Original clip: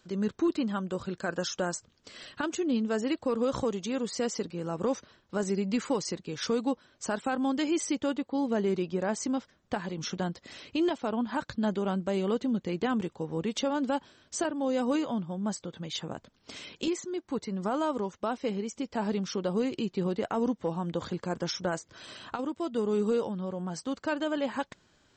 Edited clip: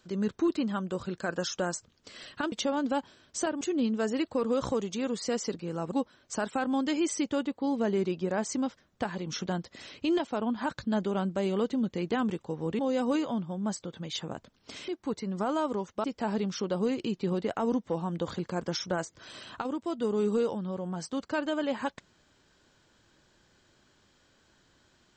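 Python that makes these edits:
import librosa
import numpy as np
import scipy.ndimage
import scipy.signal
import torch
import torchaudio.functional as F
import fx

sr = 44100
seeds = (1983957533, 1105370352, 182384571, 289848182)

y = fx.edit(x, sr, fx.cut(start_s=4.83, length_s=1.8),
    fx.move(start_s=13.5, length_s=1.09, to_s=2.52),
    fx.cut(start_s=16.68, length_s=0.45),
    fx.cut(start_s=18.29, length_s=0.49), tone=tone)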